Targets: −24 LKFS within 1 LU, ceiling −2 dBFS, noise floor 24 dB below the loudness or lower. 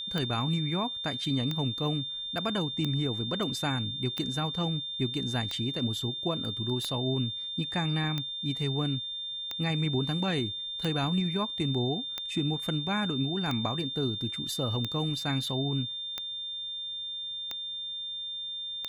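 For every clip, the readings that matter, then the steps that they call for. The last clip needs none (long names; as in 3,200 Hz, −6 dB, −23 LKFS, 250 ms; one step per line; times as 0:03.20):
number of clicks 15; interfering tone 3,600 Hz; level of the tone −34 dBFS; integrated loudness −30.5 LKFS; sample peak −15.5 dBFS; target loudness −24.0 LKFS
→ click removal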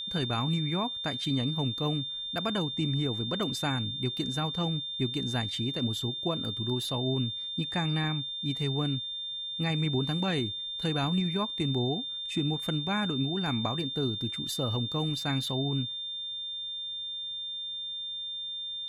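number of clicks 0; interfering tone 3,600 Hz; level of the tone −34 dBFS
→ notch filter 3,600 Hz, Q 30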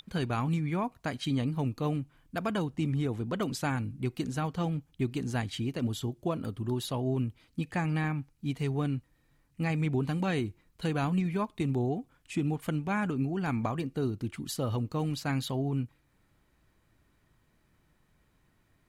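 interfering tone none found; integrated loudness −32.5 LKFS; sample peak −19.0 dBFS; target loudness −24.0 LKFS
→ level +8.5 dB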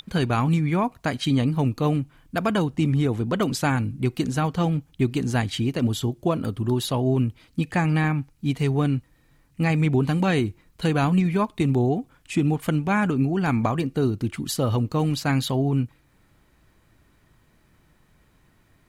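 integrated loudness −24.0 LKFS; sample peak −10.5 dBFS; background noise floor −61 dBFS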